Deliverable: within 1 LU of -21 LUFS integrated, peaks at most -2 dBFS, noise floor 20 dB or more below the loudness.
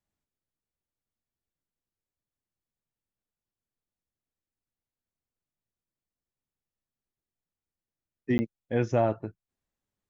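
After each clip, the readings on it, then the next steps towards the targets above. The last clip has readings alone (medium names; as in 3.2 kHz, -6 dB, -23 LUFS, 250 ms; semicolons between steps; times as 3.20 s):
dropouts 1; longest dropout 10 ms; loudness -29.0 LUFS; peak level -12.5 dBFS; loudness target -21.0 LUFS
-> interpolate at 8.38 s, 10 ms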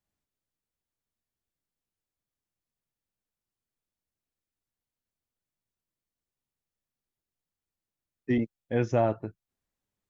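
dropouts 0; loudness -29.0 LUFS; peak level -12.5 dBFS; loudness target -21.0 LUFS
-> trim +8 dB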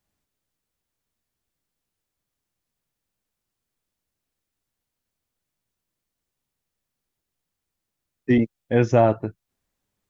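loudness -21.0 LUFS; peak level -4.5 dBFS; noise floor -84 dBFS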